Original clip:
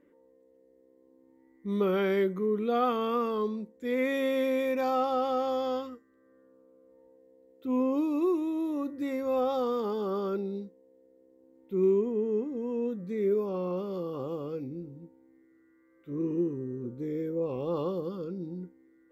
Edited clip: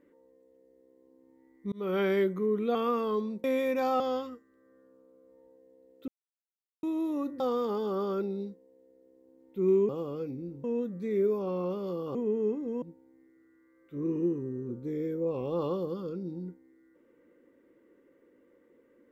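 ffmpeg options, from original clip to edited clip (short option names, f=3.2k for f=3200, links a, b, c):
-filter_complex "[0:a]asplit=12[a][b][c][d][e][f][g][h][i][j][k][l];[a]atrim=end=1.72,asetpts=PTS-STARTPTS,afade=t=out:st=1.716:d=0.004:c=hsin[m];[b]atrim=start=1.72:end=2.752,asetpts=PTS-STARTPTS,afade=t=in:d=0.28[n];[c]atrim=start=3.018:end=3.712[o];[d]atrim=start=4.448:end=5.012[p];[e]atrim=start=5.598:end=7.68,asetpts=PTS-STARTPTS,afade=t=out:st=2.078:d=0.004:c=hsin[q];[f]atrim=start=7.68:end=8.43,asetpts=PTS-STARTPTS,volume=0[r];[g]atrim=start=8.43:end=9.002,asetpts=PTS-STARTPTS,afade=t=in:d=0.004:c=hsin[s];[h]atrim=start=9.548:end=12.042[t];[i]atrim=start=14.218:end=14.972[u];[j]atrim=start=12.708:end=14.222[v];[k]atrim=start=12.038:end=12.712[w];[l]atrim=start=14.968[x];[m][n]concat=n=2:v=0:a=1[y];[y][o]acrossfade=d=0.004:c1=hsin:c2=hsin[z];[z][p]acrossfade=d=0.004:c1=hsin:c2=hsin[aa];[q][r][s]concat=n=3:v=0:a=1[ab];[aa][ab]acrossfade=d=0.004:c1=hsin:c2=hsin[ac];[ac][t]acrossfade=d=0.004:c1=hsin:c2=hsin[ad];[ad][u]acrossfade=d=0.004:c1=hsin:c2=hsin[ae];[ae][v]acrossfade=d=0.004:c1=hsin:c2=hsin[af];[af][w]acrossfade=d=0.004:c1=hsin:c2=hsin[ag];[ag][x]acrossfade=d=0.004:c1=hsin:c2=hsin"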